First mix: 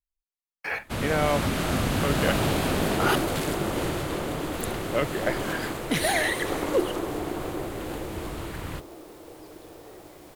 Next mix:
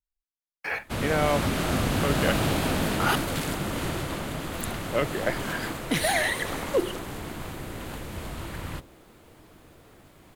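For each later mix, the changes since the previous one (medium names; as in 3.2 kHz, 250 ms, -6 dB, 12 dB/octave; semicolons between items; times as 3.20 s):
second sound -12.0 dB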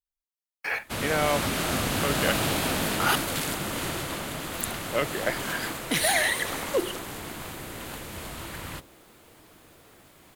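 master: add tilt EQ +1.5 dB/octave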